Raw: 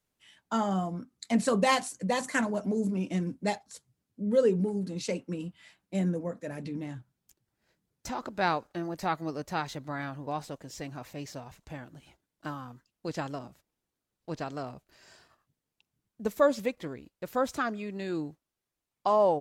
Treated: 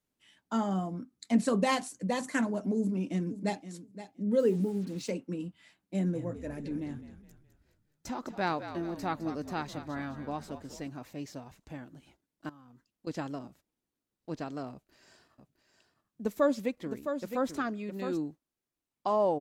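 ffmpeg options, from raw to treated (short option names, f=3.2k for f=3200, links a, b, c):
-filter_complex "[0:a]asplit=2[a][b];[b]afade=t=in:st=2.78:d=0.01,afade=t=out:st=3.7:d=0.01,aecho=0:1:520|1040:0.223872|0.0335808[c];[a][c]amix=inputs=2:normalize=0,asettb=1/sr,asplit=3[d][e][f];[d]atrim=end=4.394[g];[e]atrim=start=4.39:end=5.1,asetpts=PTS-STARTPTS,afade=t=in:d=0.004:c=qsin,afade=t=out:st=0.706:d=0.004:c=qsin,acrusher=bits=7:mix=0:aa=0.5[h];[f]atrim=start=5.096[i];[g][h]acrossfade=d=0.004:c1=hsin:c2=qsin[j];[j][i]acrossfade=d=0.004:c1=qsin:c2=hsin,asplit=3[k][l][m];[k]afade=t=out:st=6.05:d=0.02[n];[l]asplit=6[o][p][q][r][s][t];[p]adelay=209,afreqshift=-59,volume=-11.5dB[u];[q]adelay=418,afreqshift=-118,volume=-17.9dB[v];[r]adelay=627,afreqshift=-177,volume=-24.3dB[w];[s]adelay=836,afreqshift=-236,volume=-30.6dB[x];[t]adelay=1045,afreqshift=-295,volume=-37dB[y];[o][u][v][w][x][y]amix=inputs=6:normalize=0,afade=t=in:st=6.05:d=0.02,afade=t=out:st=10.88:d=0.02[z];[m]afade=t=in:st=10.88:d=0.02[aa];[n][z][aa]amix=inputs=3:normalize=0,asettb=1/sr,asplit=3[ab][ac][ad];[ab]atrim=end=12.494[ae];[ac]atrim=start=12.49:end=13.07,asetpts=PTS-STARTPTS,afade=t=in:d=0.004:c=qsin,afade=t=out:st=0.576:d=0.004:c=qsin,acompressor=threshold=-52dB:ratio=5:attack=3.2:release=140:knee=1:detection=peak[af];[ad]atrim=start=13.066[ag];[ae][af]acrossfade=d=0.004:c1=hsin:c2=qsin[ah];[ah][ag]acrossfade=d=0.004:c1=qsin:c2=hsin,asettb=1/sr,asplit=3[ai][aj][ak];[ai]atrim=end=14.724[al];[aj]atrim=start=14.72:end=18.19,asetpts=PTS-STARTPTS,afade=t=in:d=0.004:c=qsin,afade=t=out:st=3.466:d=0.004:c=qsin,aecho=1:1:662:0.398,atrim=end_sample=153027[am];[ak]atrim=start=18.186[an];[al][am]acrossfade=d=0.004:c1=hsin:c2=qsin[ao];[ao][an]acrossfade=d=0.004:c1=qsin:c2=hsin,equalizer=f=270:w=1.4:g=6.5,volume=-4.5dB"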